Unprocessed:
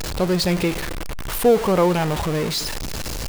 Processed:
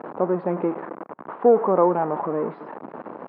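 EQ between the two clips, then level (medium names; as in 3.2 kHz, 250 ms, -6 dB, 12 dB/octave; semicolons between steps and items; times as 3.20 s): high-pass 220 Hz 24 dB/octave; four-pole ladder low-pass 1.3 kHz, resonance 35%; distance through air 260 m; +6.5 dB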